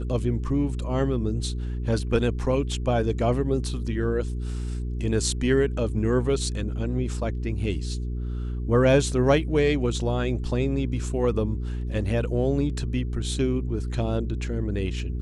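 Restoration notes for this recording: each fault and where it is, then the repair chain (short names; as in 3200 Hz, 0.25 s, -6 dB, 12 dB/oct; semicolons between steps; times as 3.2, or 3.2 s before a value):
hum 60 Hz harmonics 7 -29 dBFS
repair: de-hum 60 Hz, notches 7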